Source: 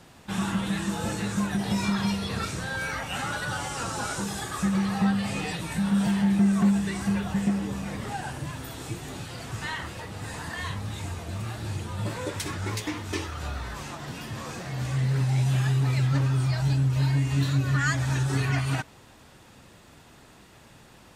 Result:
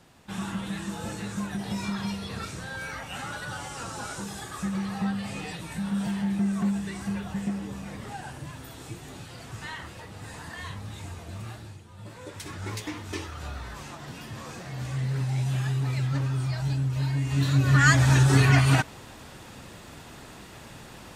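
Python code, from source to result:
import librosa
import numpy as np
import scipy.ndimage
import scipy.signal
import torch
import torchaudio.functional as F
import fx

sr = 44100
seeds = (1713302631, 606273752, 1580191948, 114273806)

y = fx.gain(x, sr, db=fx.line((11.53, -5.0), (11.83, -16.0), (12.68, -3.5), (17.16, -3.5), (17.88, 7.0)))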